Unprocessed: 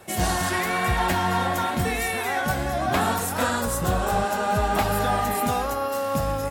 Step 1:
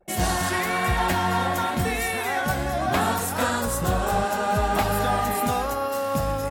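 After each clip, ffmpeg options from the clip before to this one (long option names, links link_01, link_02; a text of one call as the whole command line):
ffmpeg -i in.wav -af "anlmdn=0.251" out.wav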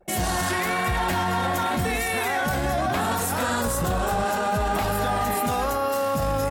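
ffmpeg -i in.wav -af "alimiter=limit=-20.5dB:level=0:latency=1:release=12,volume=4dB" out.wav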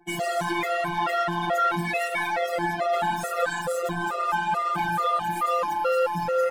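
ffmpeg -i in.wav -filter_complex "[0:a]afftfilt=real='hypot(re,im)*cos(PI*b)':imag='0':win_size=1024:overlap=0.75,asplit=2[link_01][link_02];[link_02]highpass=frequency=720:poles=1,volume=18dB,asoftclip=type=tanh:threshold=-8dB[link_03];[link_01][link_03]amix=inputs=2:normalize=0,lowpass=frequency=2200:poles=1,volume=-6dB,afftfilt=real='re*gt(sin(2*PI*2.3*pts/sr)*(1-2*mod(floor(b*sr/1024/360),2)),0)':imag='im*gt(sin(2*PI*2.3*pts/sr)*(1-2*mod(floor(b*sr/1024/360),2)),0)':win_size=1024:overlap=0.75" out.wav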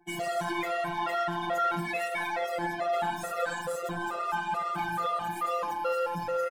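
ffmpeg -i in.wav -filter_complex "[0:a]asplit=2[link_01][link_02];[link_02]adelay=84,lowpass=frequency=2000:poles=1,volume=-10.5dB,asplit=2[link_03][link_04];[link_04]adelay=84,lowpass=frequency=2000:poles=1,volume=0.18[link_05];[link_01][link_03][link_05]amix=inputs=3:normalize=0,volume=-5.5dB" out.wav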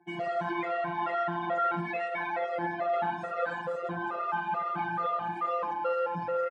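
ffmpeg -i in.wav -af "highpass=100,lowpass=2200" out.wav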